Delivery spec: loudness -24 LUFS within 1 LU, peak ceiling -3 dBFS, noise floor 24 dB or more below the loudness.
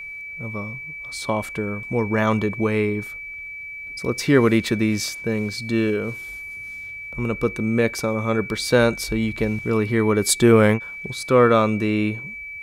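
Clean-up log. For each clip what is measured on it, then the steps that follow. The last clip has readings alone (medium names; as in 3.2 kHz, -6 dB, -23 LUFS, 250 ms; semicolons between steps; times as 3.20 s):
steady tone 2.3 kHz; tone level -32 dBFS; loudness -21.5 LUFS; peak level -3.0 dBFS; loudness target -24.0 LUFS
-> band-stop 2.3 kHz, Q 30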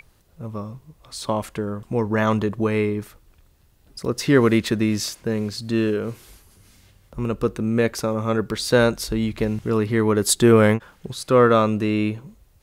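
steady tone not found; loudness -21.0 LUFS; peak level -3.5 dBFS; loudness target -24.0 LUFS
-> trim -3 dB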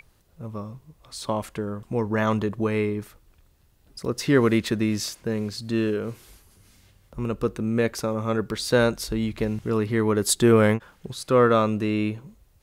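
loudness -24.0 LUFS; peak level -6.5 dBFS; noise floor -60 dBFS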